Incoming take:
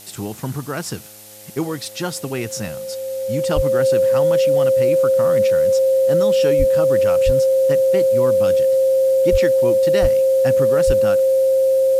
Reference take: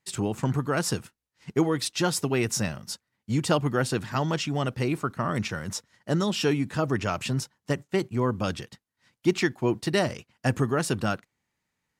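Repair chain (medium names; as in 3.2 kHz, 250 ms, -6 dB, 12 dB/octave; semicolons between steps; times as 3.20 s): de-hum 105.3 Hz, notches 8; band-stop 530 Hz, Q 30; de-plosive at 3.55/6.58/7.25/9.31/10.01/10.86 s; noise print and reduce 30 dB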